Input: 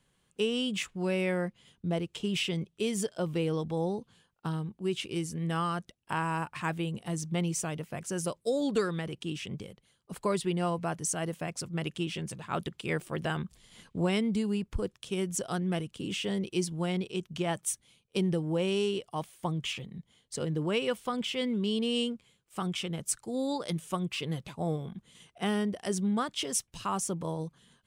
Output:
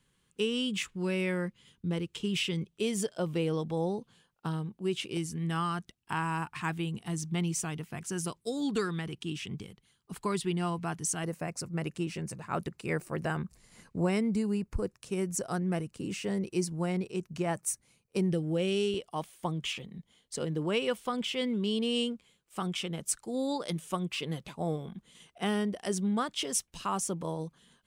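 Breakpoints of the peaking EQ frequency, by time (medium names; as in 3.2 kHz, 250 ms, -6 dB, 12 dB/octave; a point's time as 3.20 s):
peaking EQ -14.5 dB 0.37 oct
670 Hz
from 2.71 s 77 Hz
from 5.17 s 560 Hz
from 11.24 s 3.3 kHz
from 18.30 s 960 Hz
from 18.94 s 110 Hz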